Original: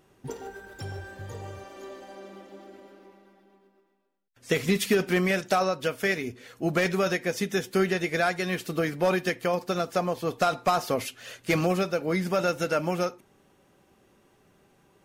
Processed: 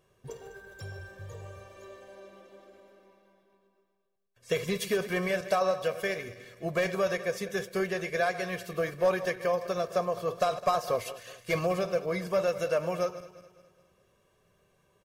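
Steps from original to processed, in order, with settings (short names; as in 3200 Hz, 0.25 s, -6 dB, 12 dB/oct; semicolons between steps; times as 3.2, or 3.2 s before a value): regenerating reverse delay 0.104 s, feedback 65%, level -13.5 dB; comb 1.8 ms, depth 67%; dynamic EQ 760 Hz, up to +4 dB, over -32 dBFS, Q 0.87; gain -7.5 dB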